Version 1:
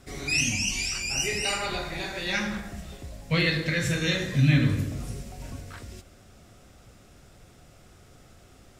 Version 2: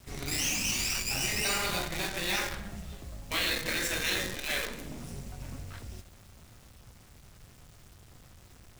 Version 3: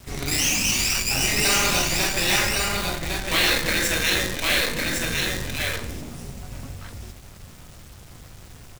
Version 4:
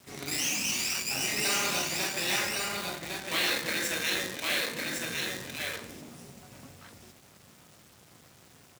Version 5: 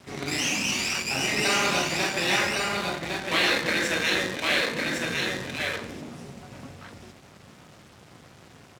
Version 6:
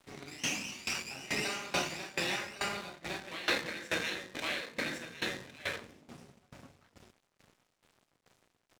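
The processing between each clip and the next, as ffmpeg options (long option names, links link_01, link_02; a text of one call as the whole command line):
ffmpeg -i in.wav -filter_complex "[0:a]afftfilt=real='re*lt(hypot(re,im),0.158)':imag='im*lt(hypot(re,im),0.158)':win_size=1024:overlap=0.75,acrossover=split=190[link_01][link_02];[link_02]acrusher=bits=6:dc=4:mix=0:aa=0.000001[link_03];[link_01][link_03]amix=inputs=2:normalize=0" out.wav
ffmpeg -i in.wav -af "aecho=1:1:1107:0.668,volume=8.5dB" out.wav
ffmpeg -i in.wav -af "highpass=170,volume=-8dB" out.wav
ffmpeg -i in.wav -af "aemphasis=mode=reproduction:type=50fm,volume=7.5dB" out.wav
ffmpeg -i in.wav -af "aeval=exprs='sgn(val(0))*max(abs(val(0))-0.00398,0)':channel_layout=same,aeval=exprs='val(0)*pow(10,-19*if(lt(mod(2.3*n/s,1),2*abs(2.3)/1000),1-mod(2.3*n/s,1)/(2*abs(2.3)/1000),(mod(2.3*n/s,1)-2*abs(2.3)/1000)/(1-2*abs(2.3)/1000))/20)':channel_layout=same,volume=-4dB" out.wav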